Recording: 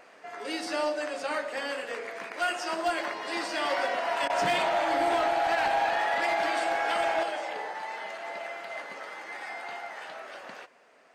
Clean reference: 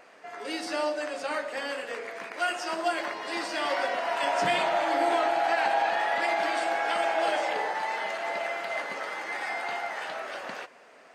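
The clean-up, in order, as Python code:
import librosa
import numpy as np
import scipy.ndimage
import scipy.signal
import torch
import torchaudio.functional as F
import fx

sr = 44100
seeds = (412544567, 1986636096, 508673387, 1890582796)

y = fx.fix_declip(x, sr, threshold_db=-20.5)
y = fx.fix_interpolate(y, sr, at_s=(4.28,), length_ms=16.0)
y = fx.gain(y, sr, db=fx.steps((0.0, 0.0), (7.23, 6.0)))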